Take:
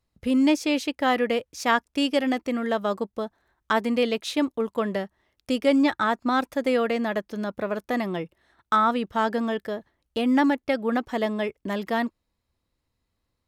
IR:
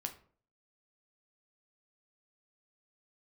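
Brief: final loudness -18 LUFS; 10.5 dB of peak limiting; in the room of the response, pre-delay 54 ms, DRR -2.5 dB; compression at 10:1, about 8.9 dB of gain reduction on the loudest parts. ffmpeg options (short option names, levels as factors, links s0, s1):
-filter_complex "[0:a]acompressor=threshold=0.0562:ratio=10,alimiter=limit=0.075:level=0:latency=1,asplit=2[s0][s1];[1:a]atrim=start_sample=2205,adelay=54[s2];[s1][s2]afir=irnorm=-1:irlink=0,volume=1.5[s3];[s0][s3]amix=inputs=2:normalize=0,volume=3.16"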